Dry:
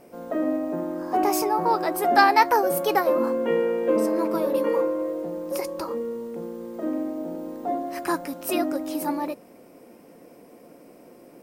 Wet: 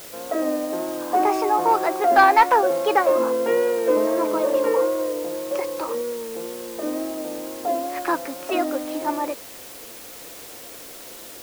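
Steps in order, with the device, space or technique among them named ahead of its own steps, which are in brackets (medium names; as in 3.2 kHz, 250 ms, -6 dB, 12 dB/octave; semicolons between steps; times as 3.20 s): tape answering machine (band-pass 370–3000 Hz; saturation -9 dBFS, distortion -22 dB; wow and flutter; white noise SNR 18 dB); trim +4.5 dB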